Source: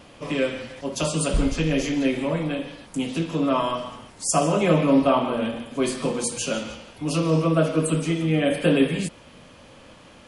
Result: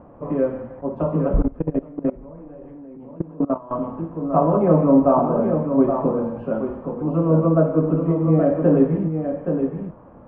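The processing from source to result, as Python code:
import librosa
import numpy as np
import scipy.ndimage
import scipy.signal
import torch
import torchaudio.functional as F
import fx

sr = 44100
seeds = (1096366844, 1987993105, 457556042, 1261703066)

y = x + 10.0 ** (-6.5 / 20.0) * np.pad(x, (int(822 * sr / 1000.0), 0))[:len(x)]
y = fx.level_steps(y, sr, step_db=21, at=(1.42, 3.71))
y = scipy.signal.sosfilt(scipy.signal.butter(4, 1100.0, 'lowpass', fs=sr, output='sos'), y)
y = F.gain(torch.from_numpy(y), 3.5).numpy()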